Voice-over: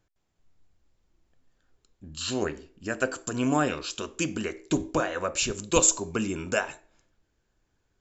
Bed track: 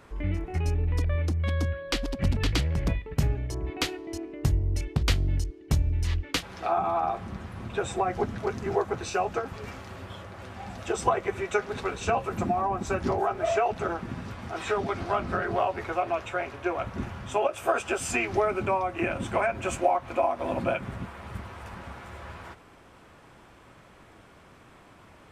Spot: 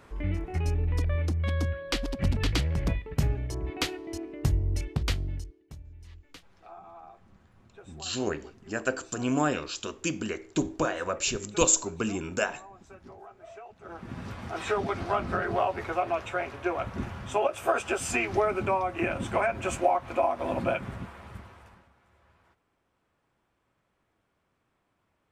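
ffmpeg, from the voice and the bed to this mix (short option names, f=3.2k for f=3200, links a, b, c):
-filter_complex "[0:a]adelay=5850,volume=-1.5dB[a];[1:a]volume=20dB,afade=t=out:st=4.76:d=0.96:silence=0.0944061,afade=t=in:st=13.82:d=0.46:silence=0.0891251,afade=t=out:st=20.78:d=1.11:silence=0.0841395[b];[a][b]amix=inputs=2:normalize=0"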